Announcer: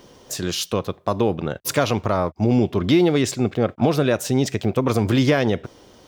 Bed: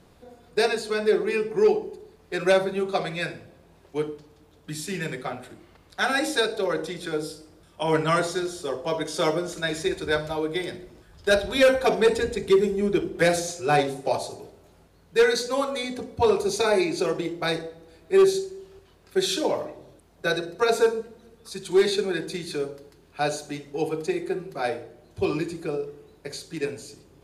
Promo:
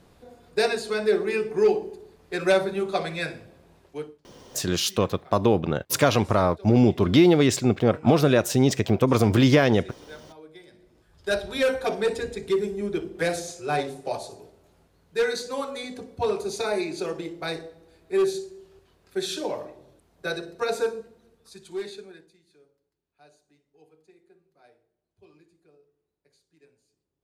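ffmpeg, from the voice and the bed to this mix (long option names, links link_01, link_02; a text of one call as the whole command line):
ffmpeg -i stem1.wav -i stem2.wav -filter_complex "[0:a]adelay=4250,volume=0dB[link_01];[1:a]volume=14dB,afade=type=out:start_time=3.72:duration=0.47:silence=0.112202,afade=type=in:start_time=10.7:duration=0.61:silence=0.188365,afade=type=out:start_time=20.78:duration=1.57:silence=0.0530884[link_02];[link_01][link_02]amix=inputs=2:normalize=0" out.wav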